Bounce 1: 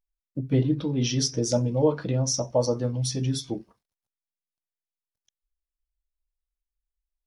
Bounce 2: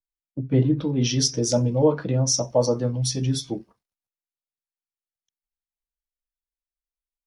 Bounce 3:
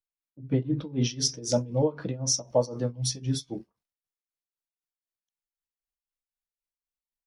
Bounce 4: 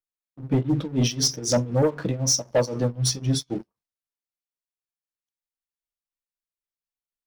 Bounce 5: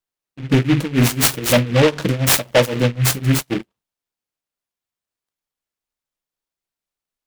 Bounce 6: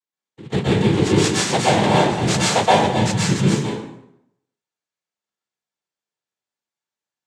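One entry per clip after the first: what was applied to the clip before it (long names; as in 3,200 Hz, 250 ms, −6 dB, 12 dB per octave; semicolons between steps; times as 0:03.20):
in parallel at −2.5 dB: brickwall limiter −17 dBFS, peak gain reduction 6.5 dB; on the sum: multiband upward and downward expander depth 40%; level −1.5 dB
amplitude tremolo 3.9 Hz, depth 87%; level −2.5 dB
leveller curve on the samples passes 2; level −1 dB
short delay modulated by noise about 2,000 Hz, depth 0.12 ms; level +7 dB
cochlear-implant simulation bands 6; convolution reverb RT60 0.75 s, pre-delay 112 ms, DRR −6 dB; level −6 dB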